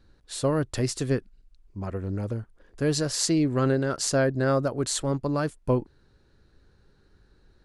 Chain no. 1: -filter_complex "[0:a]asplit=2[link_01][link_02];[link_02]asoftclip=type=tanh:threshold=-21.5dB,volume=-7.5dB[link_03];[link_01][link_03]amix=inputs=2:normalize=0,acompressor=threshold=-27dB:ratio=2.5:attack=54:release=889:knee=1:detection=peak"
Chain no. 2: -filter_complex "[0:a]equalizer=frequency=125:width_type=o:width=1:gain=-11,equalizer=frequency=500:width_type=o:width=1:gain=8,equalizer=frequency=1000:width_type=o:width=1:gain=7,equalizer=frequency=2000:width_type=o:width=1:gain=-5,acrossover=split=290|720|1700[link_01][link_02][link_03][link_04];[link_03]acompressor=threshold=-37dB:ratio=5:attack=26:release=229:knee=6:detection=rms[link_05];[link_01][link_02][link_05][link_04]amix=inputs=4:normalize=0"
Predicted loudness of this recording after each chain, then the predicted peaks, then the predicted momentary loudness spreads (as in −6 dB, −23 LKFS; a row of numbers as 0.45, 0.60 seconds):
−29.0, −23.5 LKFS; −11.0, −7.5 dBFS; 7, 11 LU